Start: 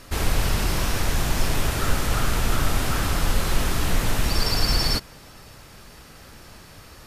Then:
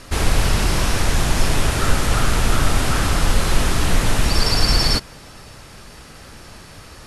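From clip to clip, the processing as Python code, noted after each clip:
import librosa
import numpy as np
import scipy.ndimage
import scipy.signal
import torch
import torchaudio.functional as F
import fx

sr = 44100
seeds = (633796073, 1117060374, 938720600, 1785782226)

y = scipy.signal.sosfilt(scipy.signal.butter(16, 12000.0, 'lowpass', fs=sr, output='sos'), x)
y = y * 10.0 ** (5.0 / 20.0)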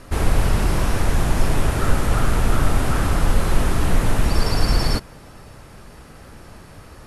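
y = fx.peak_eq(x, sr, hz=4900.0, db=-9.5, octaves=2.6)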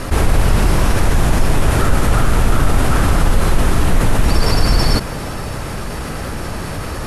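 y = fx.env_flatten(x, sr, amount_pct=50)
y = y * 10.0 ** (1.5 / 20.0)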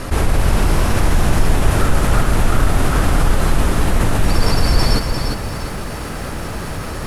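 y = fx.echo_crushed(x, sr, ms=349, feedback_pct=35, bits=7, wet_db=-6.0)
y = y * 10.0 ** (-2.0 / 20.0)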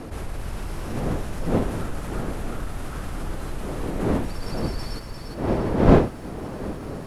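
y = fx.dmg_wind(x, sr, seeds[0], corner_hz=400.0, level_db=-9.0)
y = y * 10.0 ** (-17.0 / 20.0)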